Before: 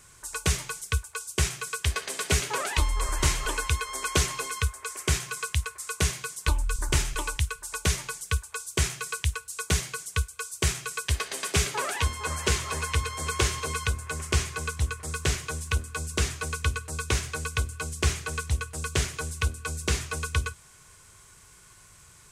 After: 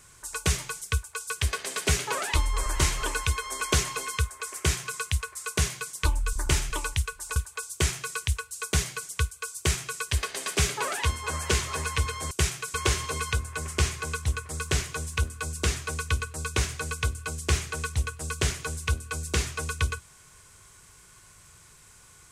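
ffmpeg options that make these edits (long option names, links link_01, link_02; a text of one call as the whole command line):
ffmpeg -i in.wav -filter_complex "[0:a]asplit=5[link_01][link_02][link_03][link_04][link_05];[link_01]atrim=end=1.302[link_06];[link_02]atrim=start=1.728:end=7.792[link_07];[link_03]atrim=start=8.328:end=13.282[link_08];[link_04]atrim=start=1.298:end=1.732[link_09];[link_05]atrim=start=13.278[link_10];[link_06][link_07]acrossfade=duration=0.004:curve1=hsin:curve2=hsin[link_11];[link_11][link_08]acrossfade=duration=0.004:curve1=hsin:curve2=hsin[link_12];[link_12][link_09]acrossfade=duration=0.004:curve1=hsin:curve2=hsin[link_13];[link_13][link_10]acrossfade=duration=0.004:curve1=hsin:curve2=hsin" out.wav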